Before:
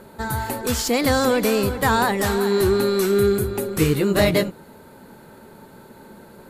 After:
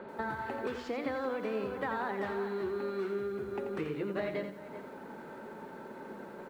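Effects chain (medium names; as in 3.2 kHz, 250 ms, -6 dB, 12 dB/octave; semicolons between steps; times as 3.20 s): echo from a far wall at 66 m, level -28 dB; compression 10:1, threshold -31 dBFS, peak gain reduction 18 dB; low-pass 6.2 kHz 12 dB/octave; three-band isolator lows -16 dB, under 190 Hz, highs -23 dB, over 2.9 kHz; hum notches 60/120/180/240/300 Hz; bit-crushed delay 86 ms, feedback 35%, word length 10-bit, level -8 dB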